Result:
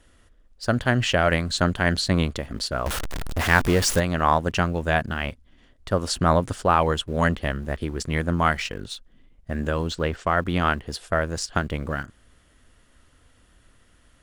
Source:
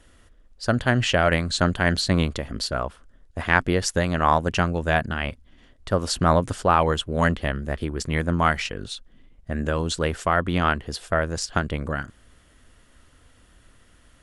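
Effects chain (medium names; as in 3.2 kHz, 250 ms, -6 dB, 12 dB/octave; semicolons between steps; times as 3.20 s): 2.86–4.00 s: jump at every zero crossing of -21.5 dBFS; 9.88–10.37 s: distance through air 92 m; in parallel at -12 dB: small samples zeroed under -32.5 dBFS; on the sum: trim -2.5 dB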